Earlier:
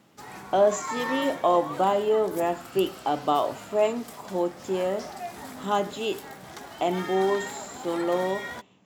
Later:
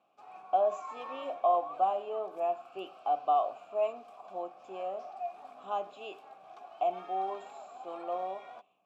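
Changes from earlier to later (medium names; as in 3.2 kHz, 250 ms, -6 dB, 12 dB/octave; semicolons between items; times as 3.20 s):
speech: add treble shelf 6 kHz +6 dB; master: add vowel filter a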